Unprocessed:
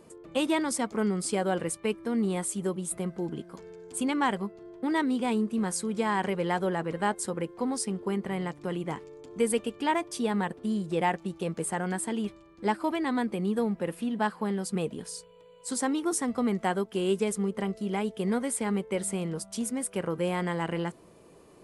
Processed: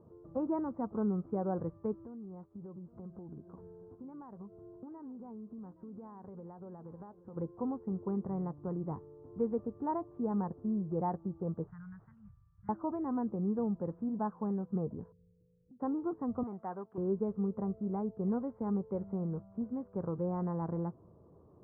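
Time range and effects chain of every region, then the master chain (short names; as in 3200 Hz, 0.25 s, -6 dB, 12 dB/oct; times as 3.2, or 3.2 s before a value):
2.04–7.36 compressor 8:1, threshold -39 dBFS + echo 0.82 s -17 dB
11.67–12.69 inverse Chebyshev band-stop 270–760 Hz, stop band 50 dB + modulation noise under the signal 15 dB
15.12–15.8 inverse Chebyshev low-pass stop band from 860 Hz, stop band 50 dB + compressor 4:1, threshold -53 dBFS
16.43–16.98 tilt +4 dB/oct + core saturation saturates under 2400 Hz
whole clip: steep low-pass 1200 Hz 36 dB/oct; bell 93 Hz +14 dB 1.5 oct; gain -8 dB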